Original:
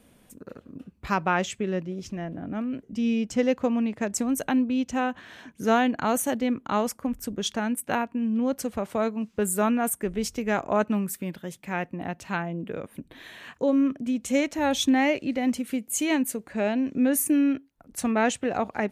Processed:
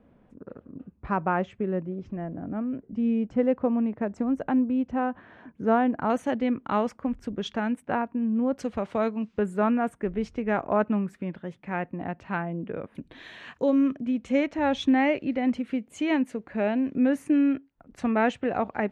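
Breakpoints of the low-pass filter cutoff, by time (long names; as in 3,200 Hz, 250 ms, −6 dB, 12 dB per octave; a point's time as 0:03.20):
1,300 Hz
from 0:06.10 2,600 Hz
from 0:07.82 1,600 Hz
from 0:08.58 3,700 Hz
from 0:09.39 2,000 Hz
from 0:12.95 5,100 Hz
from 0:13.97 2,500 Hz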